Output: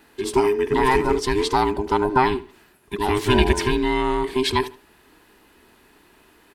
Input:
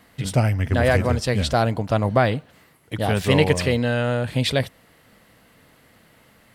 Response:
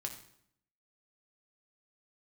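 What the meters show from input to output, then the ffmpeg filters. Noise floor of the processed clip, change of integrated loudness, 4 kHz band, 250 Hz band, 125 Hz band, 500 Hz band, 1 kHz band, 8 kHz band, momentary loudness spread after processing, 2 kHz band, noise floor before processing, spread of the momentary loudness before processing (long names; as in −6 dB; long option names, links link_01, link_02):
−56 dBFS, 0.0 dB, +0.5 dB, +0.5 dB, −9.0 dB, +1.5 dB, +5.5 dB, 0.0 dB, 6 LU, −0.5 dB, −56 dBFS, 7 LU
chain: -filter_complex "[0:a]afftfilt=real='real(if(between(b,1,1008),(2*floor((b-1)/24)+1)*24-b,b),0)':imag='imag(if(between(b,1,1008),(2*floor((b-1)/24)+1)*24-b,b),0)*if(between(b,1,1008),-1,1)':win_size=2048:overlap=0.75,asplit=2[link_01][link_02];[link_02]adelay=76,lowpass=frequency=3700:poles=1,volume=-16dB,asplit=2[link_03][link_04];[link_04]adelay=76,lowpass=frequency=3700:poles=1,volume=0.25[link_05];[link_03][link_05]amix=inputs=2:normalize=0[link_06];[link_01][link_06]amix=inputs=2:normalize=0"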